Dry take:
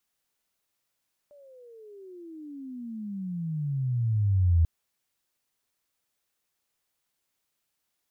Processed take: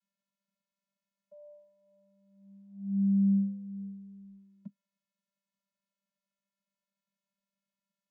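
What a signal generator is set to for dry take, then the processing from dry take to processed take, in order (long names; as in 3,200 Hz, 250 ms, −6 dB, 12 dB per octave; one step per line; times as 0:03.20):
pitch glide with a swell sine, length 3.34 s, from 591 Hz, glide −34.5 semitones, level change +33 dB, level −17 dB
channel vocoder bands 16, square 197 Hz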